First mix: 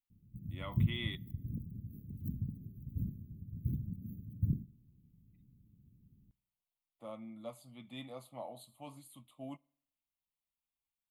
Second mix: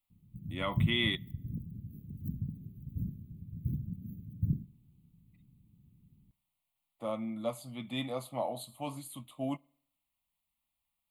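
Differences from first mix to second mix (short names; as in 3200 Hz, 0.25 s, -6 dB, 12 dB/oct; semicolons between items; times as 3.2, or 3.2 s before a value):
speech +10.5 dB; background: add bell 160 Hz +4 dB 0.44 oct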